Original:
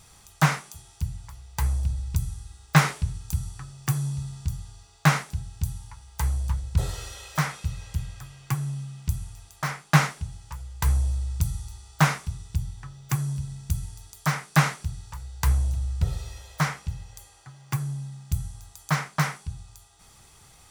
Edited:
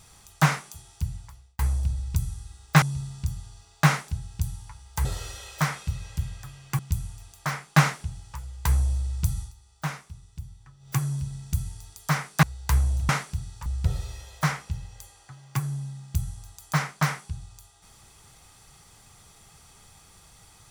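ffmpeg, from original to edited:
-filter_complex "[0:a]asplit=10[a][b][c][d][e][f][g][h][i][j];[a]atrim=end=1.59,asetpts=PTS-STARTPTS,afade=t=out:st=1.16:d=0.43[k];[b]atrim=start=1.59:end=2.822,asetpts=PTS-STARTPTS,afade=t=in:d=0.004:c=hsin[l];[c]atrim=start=4.038:end=6.272[m];[d]atrim=start=6.818:end=8.562[n];[e]atrim=start=8.958:end=11.71,asetpts=PTS-STARTPTS,afade=t=out:st=2.622:d=0.13:silence=0.281838[o];[f]atrim=start=11.71:end=12.96,asetpts=PTS-STARTPTS,volume=-11dB[p];[g]atrim=start=12.96:end=14.602,asetpts=PTS-STARTPTS,afade=t=in:d=0.13:silence=0.281838[q];[h]atrim=start=15.168:end=15.832[r];[i]atrim=start=14.598:end=15.172[s];[j]atrim=start=15.828[t];[k][l]concat=n=2:v=0:a=1[u];[u][m]acrossfade=d=0.004:c1=hsin:c2=hsin[v];[v][n]acrossfade=d=0.004:c1=hsin:c2=hsin[w];[o][p][q]concat=n=3:v=0:a=1[x];[w][x]acrossfade=d=0.004:c1=hsin:c2=hsin[y];[y][r]acrossfade=d=0.004:c1=hsin:c2=hsin[z];[z][s]acrossfade=d=0.004:c1=hsin:c2=hsin[aa];[aa][t]acrossfade=d=0.004:c1=hsin:c2=hsin"

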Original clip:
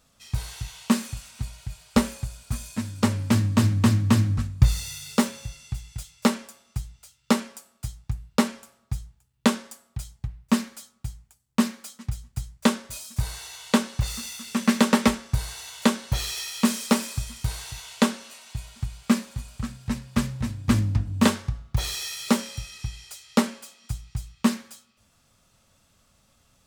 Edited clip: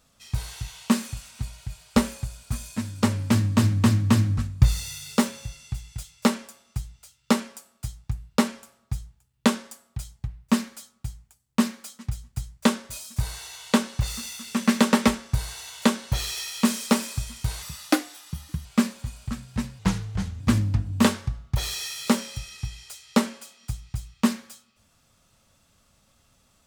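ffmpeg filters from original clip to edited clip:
-filter_complex "[0:a]asplit=5[a][b][c][d][e];[a]atrim=end=17.624[f];[b]atrim=start=17.62:end=18.97,asetpts=PTS-STARTPTS,asetrate=57771,aresample=44100[g];[c]atrim=start=18.966:end=20.114[h];[d]atrim=start=20.11:end=20.61,asetpts=PTS-STARTPTS,asetrate=36162,aresample=44100,atrim=end_sample=26890,asetpts=PTS-STARTPTS[i];[e]atrim=start=20.606[j];[f][g]acrossfade=d=0.004:c1=hsin:c2=hsin[k];[k][h]acrossfade=d=0.004:c1=hsin:c2=hsin[l];[l][i]acrossfade=d=0.004:c1=hsin:c2=hsin[m];[m][j]acrossfade=d=0.004:c1=hsin:c2=hsin"

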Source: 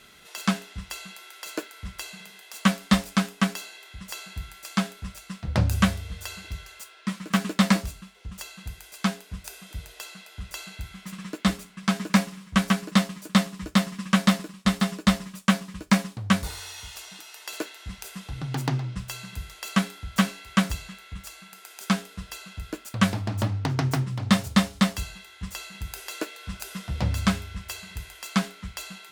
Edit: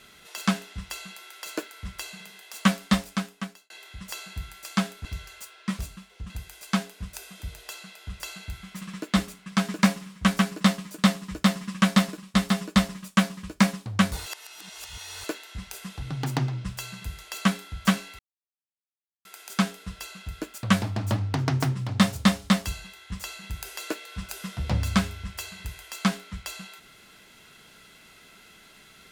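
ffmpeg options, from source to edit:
-filter_complex "[0:a]asplit=9[a][b][c][d][e][f][g][h][i];[a]atrim=end=3.7,asetpts=PTS-STARTPTS,afade=t=out:st=2.72:d=0.98[j];[b]atrim=start=3.7:end=5.052,asetpts=PTS-STARTPTS,afade=t=in:d=0.004:c=hsin[k];[c]atrim=start=6.438:end=7.182[l];[d]atrim=start=7.838:end=8.352[m];[e]atrim=start=8.608:end=16.572[n];[f]atrim=start=16.568:end=17.552,asetpts=PTS-STARTPTS,areverse[o];[g]atrim=start=17.548:end=20.5,asetpts=PTS-STARTPTS,afade=t=out:st=2.948:d=0.004:c=hsin[p];[h]atrim=start=20.5:end=21.56,asetpts=PTS-STARTPTS,volume=0[q];[i]atrim=start=21.56,asetpts=PTS-STARTPTS,afade=t=in:d=0.004:c=hsin[r];[j][k]concat=n=2:v=0:a=1[s];[s][l]acrossfade=d=0.004:c1=hsin:c2=hsin[t];[t][m]acrossfade=d=0.004:c1=hsin:c2=hsin[u];[u][n]acrossfade=d=0.004:c1=hsin:c2=hsin[v];[v][o]acrossfade=d=0.004:c1=hsin:c2=hsin[w];[p][q][r]concat=n=3:v=0:a=1[x];[w][x]acrossfade=d=0.004:c1=hsin:c2=hsin"

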